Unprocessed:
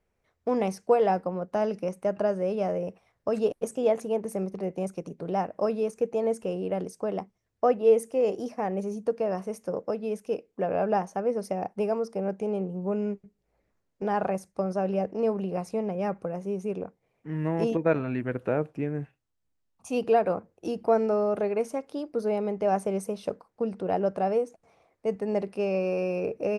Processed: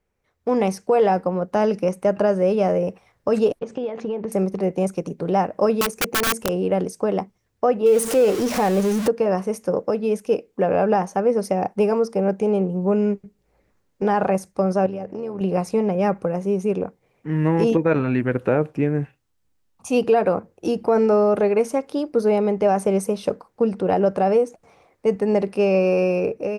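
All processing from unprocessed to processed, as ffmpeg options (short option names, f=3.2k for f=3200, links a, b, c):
-filter_complex "[0:a]asettb=1/sr,asplit=3[a][b][c];[a]atrim=end=3.594[d];[b]atrim=start=3.59:end=4.32,asetpts=PTS-STARTPTS,afade=t=in:d=0.004:c=qsin,afade=t=out:st=0.726:d=0.004:c=qsin,lowpass=f=4.4k:w=0.5412,lowpass=f=4.4k:w=1.3066,acompressor=threshold=-31dB:ratio=16:attack=3.2:release=140:knee=1:detection=peak[e];[c]atrim=start=4.316[f];[d][e]acrossfade=d=0.004:c1=hsin:c2=qsin[g];[g][f]acrossfade=d=0.004:c1=qsin:c2=hsin,asettb=1/sr,asplit=3[h][i][j];[h]atrim=end=5.814[k];[i]atrim=start=5.81:end=6.49,asetpts=PTS-STARTPTS,afade=t=in:d=0.004:c=qsin,afade=t=out:st=0.676:d=0.004:c=qsin,aeval=exprs='(mod(12.6*val(0)+1,2)-1)/12.6':c=same,highshelf=f=10k:g=8[l];[j]atrim=start=6.486[m];[k][l]acrossfade=d=0.004:c1=hsin:c2=qsin[n];[n][m]acrossfade=d=0.004:c1=qsin:c2=hsin,asettb=1/sr,asplit=3[o][p][q];[o]atrim=end=7.864[r];[p]atrim=start=7.86:end=9.08,asetpts=PTS-STARTPTS,afade=t=in:d=0.004:c=qsin,afade=t=out:st=1.216:d=0.004:c=qsin,aeval=exprs='val(0)+0.5*0.0168*sgn(val(0))':c=same,equalizer=f=10k:w=0.37:g=3.5,acompressor=mode=upward:threshold=-26dB:ratio=2.5:attack=3.2:release=140:knee=2.83:detection=peak[s];[q]atrim=start=9.076[t];[r][s]acrossfade=d=0.004:c1=hsin:c2=qsin[u];[u][t]acrossfade=d=0.004:c1=qsin:c2=hsin,asettb=1/sr,asplit=3[v][w][x];[v]atrim=end=14.864[y];[w]atrim=start=14.86:end=15.41,asetpts=PTS-STARTPTS,afade=t=in:d=0.004:c=qsin,afade=t=out:st=0.546:d=0.004:c=qsin,acompressor=threshold=-34dB:ratio=6:attack=3.2:release=140:knee=1:detection=peak,tremolo=f=83:d=0.462[z];[x]atrim=start=15.406[aa];[y][z]acrossfade=d=0.004:c1=hsin:c2=qsin[ab];[ab][aa]acrossfade=d=0.004:c1=qsin:c2=hsin,bandreject=f=660:w=12,dynaudnorm=f=190:g=5:m=8.5dB,alimiter=level_in=9dB:limit=-1dB:release=50:level=0:latency=1,volume=-8dB"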